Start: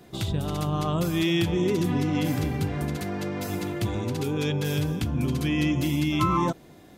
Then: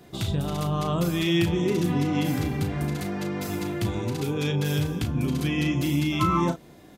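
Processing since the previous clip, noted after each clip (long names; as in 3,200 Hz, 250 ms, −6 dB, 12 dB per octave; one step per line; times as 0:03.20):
double-tracking delay 35 ms −8 dB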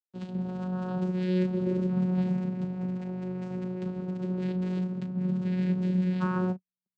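slack as between gear wheels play −31 dBFS
frequency shifter −31 Hz
channel vocoder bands 8, saw 183 Hz
level −2.5 dB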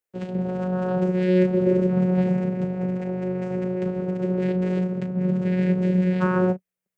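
octave-band graphic EQ 250/500/1,000/2,000/4,000 Hz −5/+9/−4/+5/−7 dB
level +7.5 dB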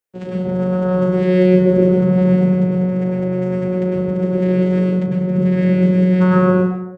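far-end echo of a speakerphone 160 ms, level −13 dB
dense smooth reverb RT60 0.86 s, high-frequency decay 0.5×, pre-delay 90 ms, DRR −3 dB
level +1.5 dB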